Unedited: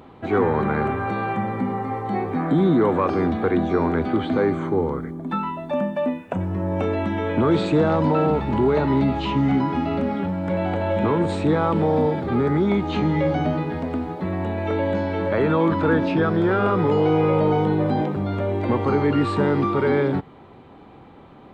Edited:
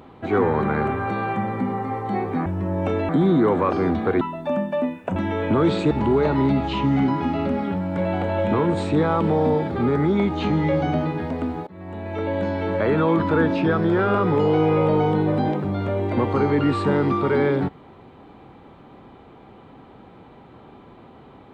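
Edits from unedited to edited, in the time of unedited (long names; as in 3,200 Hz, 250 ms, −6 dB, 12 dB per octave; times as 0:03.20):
0:03.58–0:05.45: remove
0:06.40–0:07.03: move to 0:02.46
0:07.78–0:08.43: remove
0:14.19–0:15.34: fade in equal-power, from −23 dB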